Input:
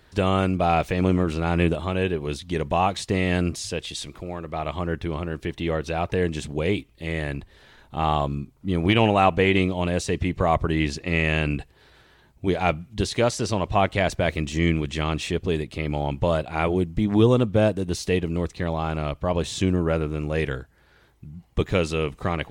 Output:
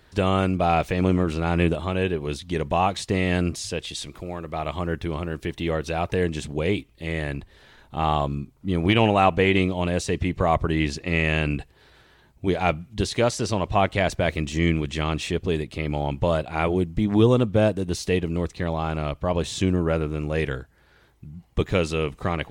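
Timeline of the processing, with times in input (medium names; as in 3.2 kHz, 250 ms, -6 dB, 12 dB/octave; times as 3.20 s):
4.14–6.25 s: treble shelf 6.9 kHz +5.5 dB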